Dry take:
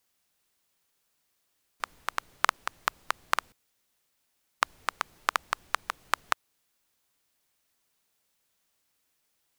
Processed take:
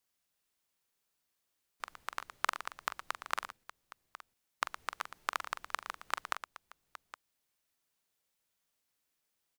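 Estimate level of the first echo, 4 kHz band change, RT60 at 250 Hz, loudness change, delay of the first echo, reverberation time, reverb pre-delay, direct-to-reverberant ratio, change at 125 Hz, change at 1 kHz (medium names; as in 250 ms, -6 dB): -10.5 dB, -7.5 dB, no reverb, -7.5 dB, 43 ms, no reverb, no reverb, no reverb, no reading, -7.5 dB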